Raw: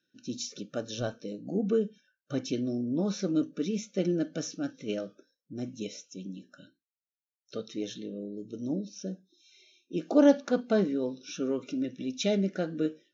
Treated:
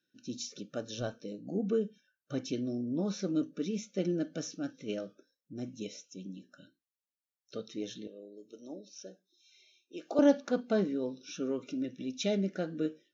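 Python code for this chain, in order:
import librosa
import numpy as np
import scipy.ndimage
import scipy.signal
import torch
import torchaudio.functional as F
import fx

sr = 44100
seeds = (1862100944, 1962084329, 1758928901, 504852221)

y = fx.highpass(x, sr, hz=490.0, slope=12, at=(8.07, 10.19))
y = F.gain(torch.from_numpy(y), -3.5).numpy()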